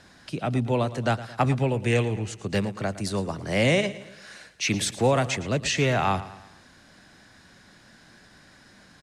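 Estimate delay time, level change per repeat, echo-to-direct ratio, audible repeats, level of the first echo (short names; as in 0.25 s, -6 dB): 0.112 s, -6.5 dB, -15.0 dB, 3, -16.0 dB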